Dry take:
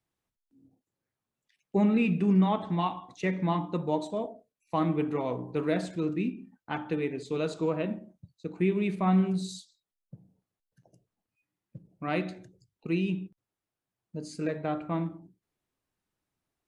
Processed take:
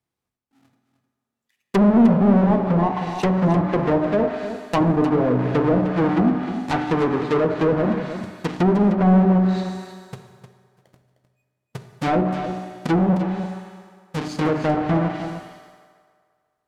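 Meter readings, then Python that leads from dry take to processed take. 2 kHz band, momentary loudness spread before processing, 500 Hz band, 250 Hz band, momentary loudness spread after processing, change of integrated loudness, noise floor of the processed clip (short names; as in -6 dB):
+8.5 dB, 15 LU, +10.5 dB, +10.5 dB, 14 LU, +10.0 dB, -81 dBFS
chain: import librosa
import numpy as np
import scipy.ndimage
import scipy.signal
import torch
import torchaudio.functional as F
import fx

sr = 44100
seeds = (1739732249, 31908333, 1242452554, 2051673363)

p1 = fx.halfwave_hold(x, sr)
p2 = fx.highpass(p1, sr, hz=61.0, slope=6)
p3 = fx.leveller(p2, sr, passes=2)
p4 = fx.rev_fdn(p3, sr, rt60_s=2.0, lf_ratio=0.7, hf_ratio=0.7, size_ms=24.0, drr_db=6.5)
p5 = fx.env_lowpass_down(p4, sr, base_hz=860.0, full_db=-15.5)
p6 = p5 + fx.echo_single(p5, sr, ms=307, db=-10.5, dry=0)
y = F.gain(torch.from_numpy(p6), 1.0).numpy()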